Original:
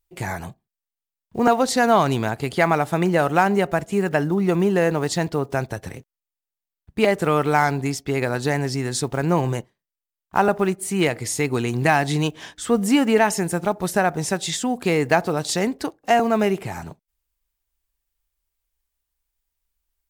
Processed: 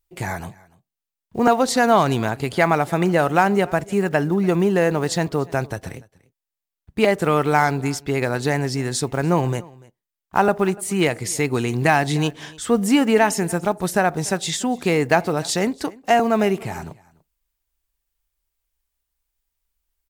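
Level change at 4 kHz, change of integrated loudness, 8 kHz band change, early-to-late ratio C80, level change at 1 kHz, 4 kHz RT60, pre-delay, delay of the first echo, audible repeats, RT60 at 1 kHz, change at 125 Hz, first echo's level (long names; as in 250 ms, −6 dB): +1.0 dB, +1.0 dB, +1.0 dB, no reverb audible, +1.0 dB, no reverb audible, no reverb audible, 292 ms, 1, no reverb audible, +1.0 dB, −23.5 dB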